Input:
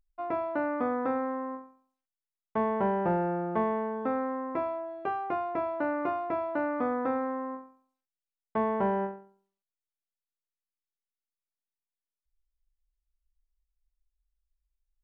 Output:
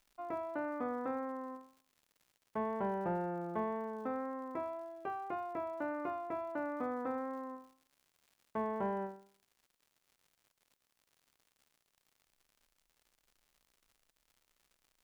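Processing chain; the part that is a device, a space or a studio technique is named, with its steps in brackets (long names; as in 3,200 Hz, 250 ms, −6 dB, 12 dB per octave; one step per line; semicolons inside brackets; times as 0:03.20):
vinyl LP (tape wow and flutter 15 cents; surface crackle 140 per second −47 dBFS; white noise bed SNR 44 dB)
level −8.5 dB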